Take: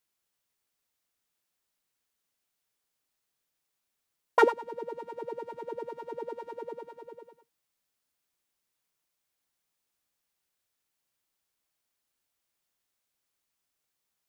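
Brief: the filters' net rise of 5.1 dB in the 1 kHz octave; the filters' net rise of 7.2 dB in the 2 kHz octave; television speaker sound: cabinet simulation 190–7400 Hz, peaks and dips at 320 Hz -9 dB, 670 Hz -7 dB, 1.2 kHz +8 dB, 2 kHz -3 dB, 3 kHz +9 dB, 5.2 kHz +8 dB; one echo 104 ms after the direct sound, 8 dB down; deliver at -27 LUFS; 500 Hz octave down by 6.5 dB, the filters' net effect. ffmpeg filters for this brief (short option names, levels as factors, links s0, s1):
-af "highpass=f=190:w=0.5412,highpass=f=190:w=1.3066,equalizer=f=320:t=q:w=4:g=-9,equalizer=f=670:t=q:w=4:g=-7,equalizer=f=1200:t=q:w=4:g=8,equalizer=f=2000:t=q:w=4:g=-3,equalizer=f=3000:t=q:w=4:g=9,equalizer=f=5200:t=q:w=4:g=8,lowpass=f=7400:w=0.5412,lowpass=f=7400:w=1.3066,equalizer=f=500:t=o:g=-6,equalizer=f=1000:t=o:g=3.5,equalizer=f=2000:t=o:g=7.5,aecho=1:1:104:0.398,volume=1.19"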